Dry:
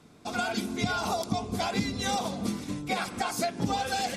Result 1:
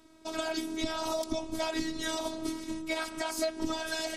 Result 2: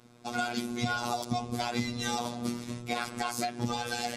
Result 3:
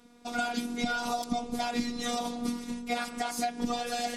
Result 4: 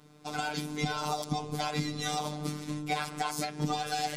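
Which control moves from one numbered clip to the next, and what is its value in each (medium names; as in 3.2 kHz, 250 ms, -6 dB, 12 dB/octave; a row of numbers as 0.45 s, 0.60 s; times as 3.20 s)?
robot voice, frequency: 320 Hz, 120 Hz, 240 Hz, 150 Hz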